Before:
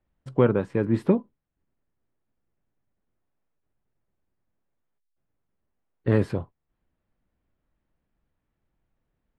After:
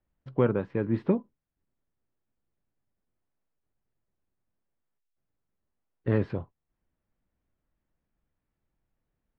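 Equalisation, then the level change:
high-frequency loss of the air 240 metres
parametric band 3,700 Hz +3 dB 2.5 octaves
−4.0 dB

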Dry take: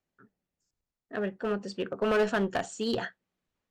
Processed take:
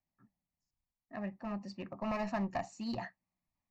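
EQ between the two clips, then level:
high-shelf EQ 2,400 Hz −8 dB
phaser with its sweep stopped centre 2,200 Hz, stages 8
−2.0 dB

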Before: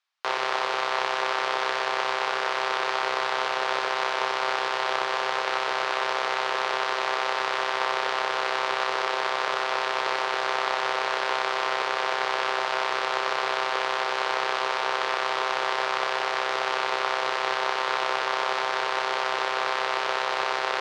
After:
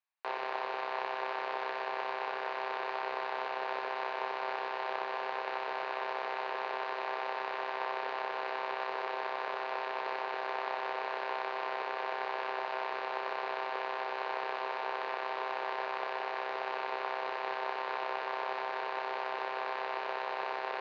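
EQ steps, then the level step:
high-frequency loss of the air 240 metres
loudspeaker in its box 250–6,700 Hz, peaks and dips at 330 Hz −4 dB, 530 Hz −3 dB, 1,300 Hz −9 dB, 2,000 Hz −4 dB, 3,300 Hz −8 dB, 5,400 Hz −7 dB
−5.0 dB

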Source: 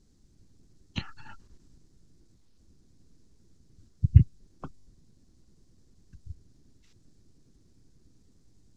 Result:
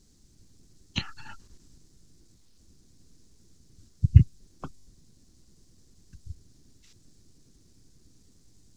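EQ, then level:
high-shelf EQ 3,000 Hz +9.5 dB
+1.5 dB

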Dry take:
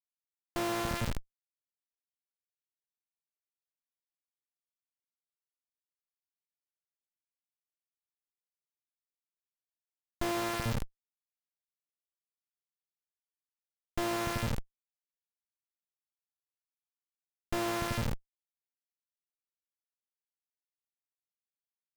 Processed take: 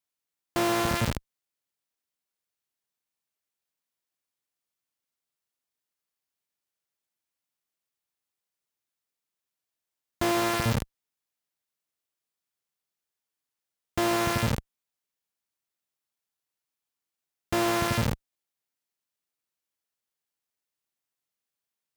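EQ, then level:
high-pass filter 58 Hz 12 dB per octave
+7.5 dB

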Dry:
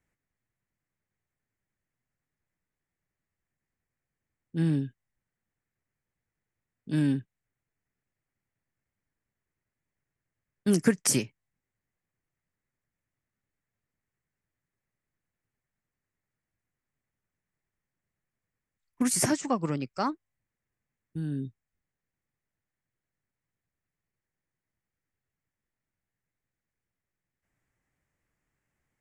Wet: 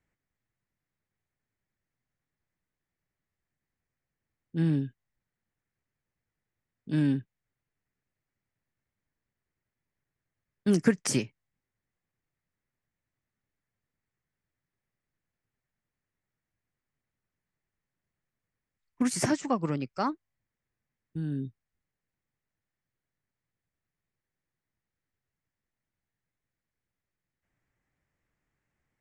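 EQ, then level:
high-frequency loss of the air 61 metres
0.0 dB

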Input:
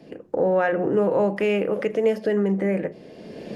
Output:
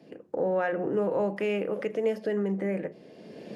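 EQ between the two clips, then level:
high-pass filter 110 Hz
−6.5 dB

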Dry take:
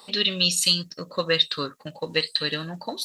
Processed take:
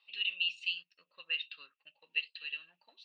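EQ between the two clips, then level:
resonant band-pass 2,700 Hz, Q 15
high-frequency loss of the air 140 metres
+1.0 dB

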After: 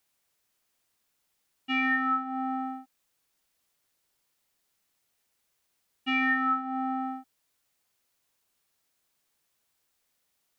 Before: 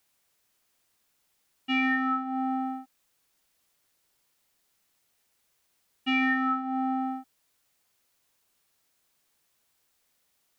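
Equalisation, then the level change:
dynamic equaliser 1,500 Hz, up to +6 dB, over −43 dBFS, Q 1.1
−3.5 dB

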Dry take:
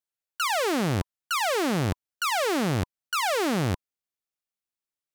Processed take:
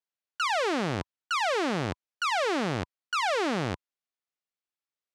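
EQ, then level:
high-pass filter 74 Hz 12 dB per octave
high-frequency loss of the air 86 metres
low-shelf EQ 220 Hz −9 dB
0.0 dB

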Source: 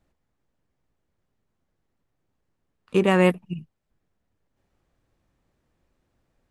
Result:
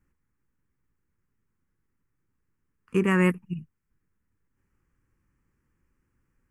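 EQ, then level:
phaser with its sweep stopped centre 1,600 Hz, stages 4
0.0 dB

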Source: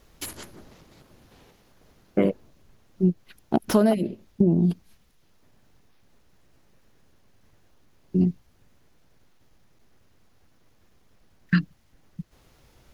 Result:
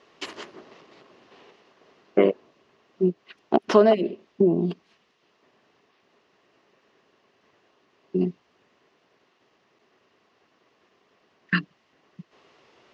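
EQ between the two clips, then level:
loudspeaker in its box 290–5,700 Hz, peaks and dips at 400 Hz +7 dB, 670 Hz +4 dB, 1,100 Hz +8 dB, 1,900 Hz +5 dB, 2,800 Hz +7 dB
low-shelf EQ 390 Hz +3 dB
0.0 dB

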